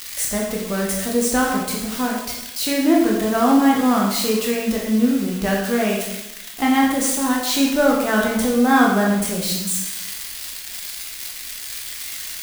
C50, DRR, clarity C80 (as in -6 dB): 2.5 dB, -3.0 dB, 5.0 dB